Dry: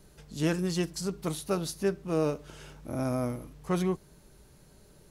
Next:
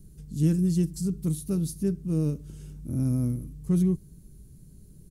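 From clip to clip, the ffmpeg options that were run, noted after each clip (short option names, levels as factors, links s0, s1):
-af "firequalizer=gain_entry='entry(160,0);entry(660,-27);entry(8800,-7)':delay=0.05:min_phase=1,volume=2.82"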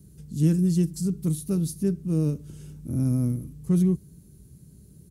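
-af "highpass=f=62:w=0.5412,highpass=f=62:w=1.3066,volume=1.26"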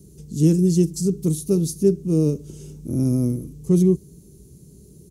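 -af "equalizer=f=100:t=o:w=0.67:g=-4,equalizer=f=400:t=o:w=0.67:g=9,equalizer=f=1600:t=o:w=0.67:g=-9,equalizer=f=6300:t=o:w=0.67:g=7,volume=1.5"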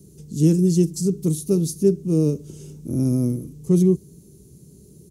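-af "highpass=73"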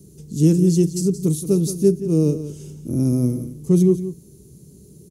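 -af "aecho=1:1:174:0.237,volume=1.19"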